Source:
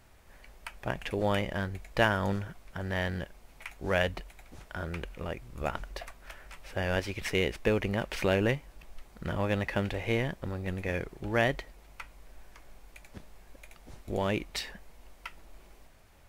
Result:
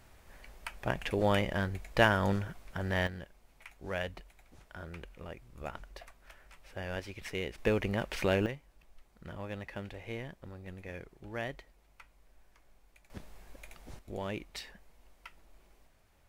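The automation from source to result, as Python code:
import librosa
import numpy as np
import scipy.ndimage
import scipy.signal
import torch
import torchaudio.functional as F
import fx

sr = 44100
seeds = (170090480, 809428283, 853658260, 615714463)

y = fx.gain(x, sr, db=fx.steps((0.0, 0.5), (3.07, -8.5), (7.58, -2.0), (8.46, -11.5), (13.1, 0.5), (13.99, -8.0)))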